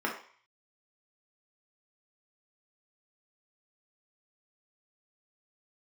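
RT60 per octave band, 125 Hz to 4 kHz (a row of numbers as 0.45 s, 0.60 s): 0.65 s, 0.35 s, 0.40 s, 0.55 s, 0.60 s, 0.55 s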